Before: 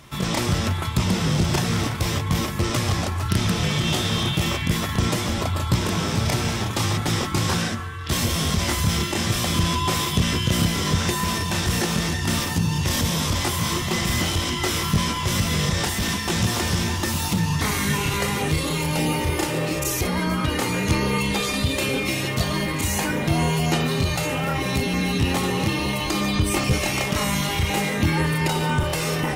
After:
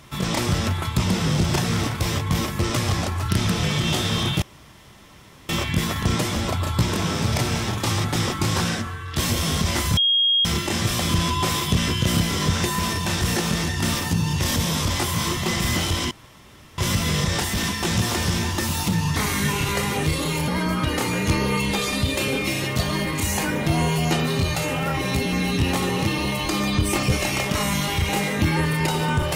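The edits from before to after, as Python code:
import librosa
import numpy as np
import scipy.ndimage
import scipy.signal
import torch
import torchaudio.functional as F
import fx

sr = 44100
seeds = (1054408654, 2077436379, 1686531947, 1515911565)

y = fx.edit(x, sr, fx.insert_room_tone(at_s=4.42, length_s=1.07),
    fx.insert_tone(at_s=8.9, length_s=0.48, hz=3260.0, db=-15.5),
    fx.room_tone_fill(start_s=14.56, length_s=0.67),
    fx.cut(start_s=18.93, length_s=1.16), tone=tone)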